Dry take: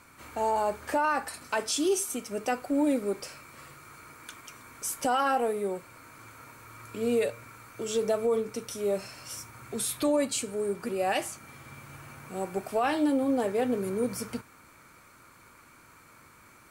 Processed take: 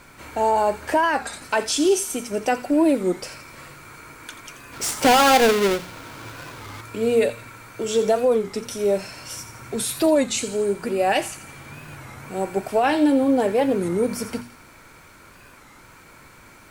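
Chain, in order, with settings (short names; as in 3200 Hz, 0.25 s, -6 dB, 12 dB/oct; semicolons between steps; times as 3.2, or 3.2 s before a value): 4.74–6.81 half-waves squared off; notches 60/120/180/240 Hz; added noise pink -63 dBFS; high shelf 7600 Hz -6 dB; notch 1200 Hz, Q 8.3; thin delay 85 ms, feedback 50%, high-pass 2500 Hz, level -11 dB; record warp 33 1/3 rpm, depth 160 cents; gain +8 dB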